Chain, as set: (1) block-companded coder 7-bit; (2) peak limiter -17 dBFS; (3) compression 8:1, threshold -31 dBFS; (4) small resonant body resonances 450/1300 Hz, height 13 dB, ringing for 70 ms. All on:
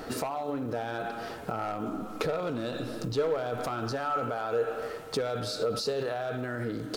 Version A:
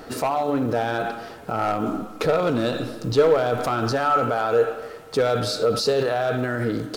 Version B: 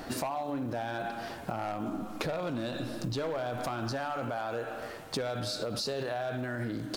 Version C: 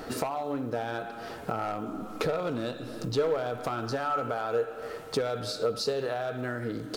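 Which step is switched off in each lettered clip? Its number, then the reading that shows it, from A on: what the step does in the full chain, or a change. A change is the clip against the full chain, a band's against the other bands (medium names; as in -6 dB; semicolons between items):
3, momentary loudness spread change +2 LU; 4, 500 Hz band -4.0 dB; 2, mean gain reduction 5.0 dB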